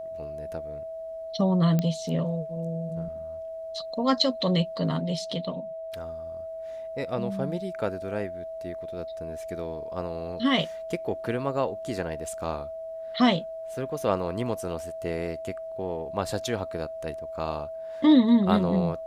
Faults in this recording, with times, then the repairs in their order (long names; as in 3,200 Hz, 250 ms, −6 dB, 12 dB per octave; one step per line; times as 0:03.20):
whistle 650 Hz −34 dBFS
0:01.79: click −13 dBFS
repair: click removal
notch filter 650 Hz, Q 30